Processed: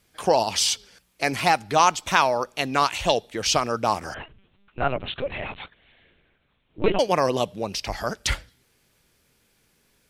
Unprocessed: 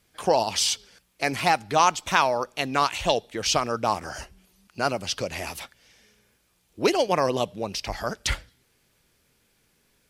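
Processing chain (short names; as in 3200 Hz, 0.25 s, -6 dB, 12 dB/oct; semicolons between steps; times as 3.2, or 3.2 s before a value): 4.14–6.99 LPC vocoder at 8 kHz pitch kept; gain +1.5 dB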